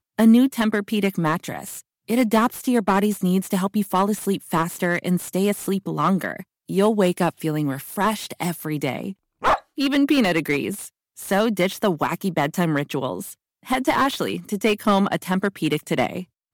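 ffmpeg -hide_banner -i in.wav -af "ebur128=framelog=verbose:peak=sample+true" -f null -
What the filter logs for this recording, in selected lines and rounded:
Integrated loudness:
  I:         -22.0 LUFS
  Threshold: -32.3 LUFS
Loudness range:
  LRA:         1.9 LU
  Threshold: -42.6 LUFS
  LRA low:   -23.5 LUFS
  LRA high:  -21.6 LUFS
Sample peak:
  Peak:       -4.3 dBFS
True peak:
  Peak:       -4.3 dBFS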